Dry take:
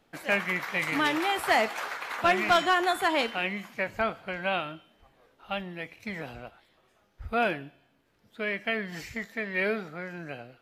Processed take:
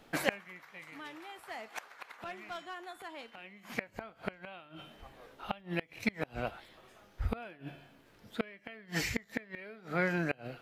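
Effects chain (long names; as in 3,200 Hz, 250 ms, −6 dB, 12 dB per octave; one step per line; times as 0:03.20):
hum removal 73.07 Hz, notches 2
gate with flip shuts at −24 dBFS, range −28 dB
level +7.5 dB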